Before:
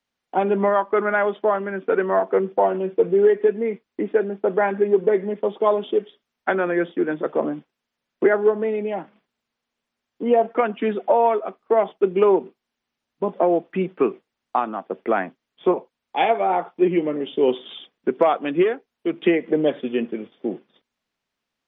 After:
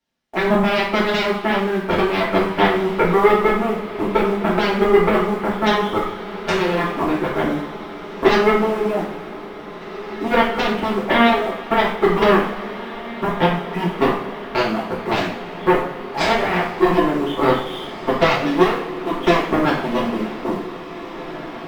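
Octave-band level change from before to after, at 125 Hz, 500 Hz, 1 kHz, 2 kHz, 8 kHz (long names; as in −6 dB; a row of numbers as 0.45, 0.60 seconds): +10.0 dB, +0.5 dB, +4.5 dB, +8.0 dB, can't be measured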